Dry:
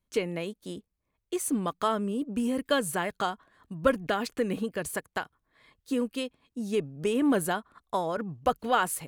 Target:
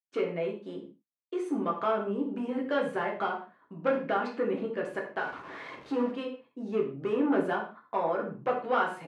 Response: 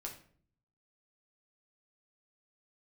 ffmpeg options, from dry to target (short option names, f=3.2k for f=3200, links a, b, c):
-filter_complex "[0:a]asettb=1/sr,asplit=3[a][b][c];[a]atrim=end=5.194[d];[b]atrim=start=5.19:end=6.11,asetpts=PTS-STARTPTS,afade=t=in:d=0.004:c=qsin,afade=t=out:st=0.916:d=0.004:c=qsin,aeval=exprs='val(0)+0.5*0.015*sgn(val(0))':c=same[e];[c]atrim=start=6.106[f];[d][e]acrossfade=d=0.004:c1=hsin:c2=qsin[g];[g][f]acrossfade=d=0.004:c1=qsin:c2=hsin,agate=range=-33dB:threshold=-54dB:ratio=3:detection=peak,asoftclip=type=tanh:threshold=-22.5dB,highpass=250,lowpass=2.2k,aecho=1:1:52|74:0.178|0.158[h];[1:a]atrim=start_sample=2205,afade=t=out:st=0.21:d=0.01,atrim=end_sample=9702[i];[h][i]afir=irnorm=-1:irlink=0,volume=4.5dB"